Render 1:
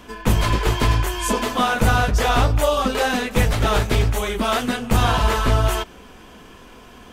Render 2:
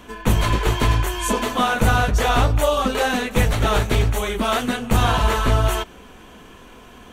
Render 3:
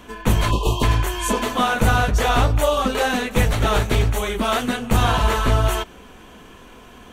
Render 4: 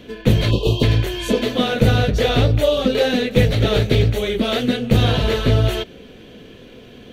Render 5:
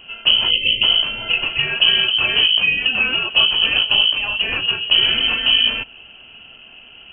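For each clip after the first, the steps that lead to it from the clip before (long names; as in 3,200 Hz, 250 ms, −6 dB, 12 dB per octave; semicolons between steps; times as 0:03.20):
notch filter 5,000 Hz, Q 7.1
time-frequency box erased 0:00.51–0:00.83, 1,200–2,500 Hz
octave-band graphic EQ 125/250/500/1,000/2,000/4,000/8,000 Hz +11/+5/+12/−11/+4/+11/−7 dB; level −4.5 dB
voice inversion scrambler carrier 3,100 Hz; level −1 dB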